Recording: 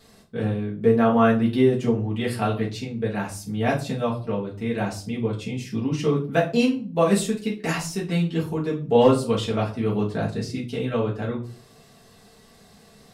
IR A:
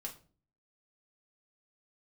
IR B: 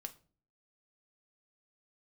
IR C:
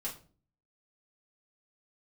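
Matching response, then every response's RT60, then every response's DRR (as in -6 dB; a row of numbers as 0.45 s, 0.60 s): C; 0.40 s, no single decay rate, 0.40 s; 0.0 dB, 6.5 dB, -5.5 dB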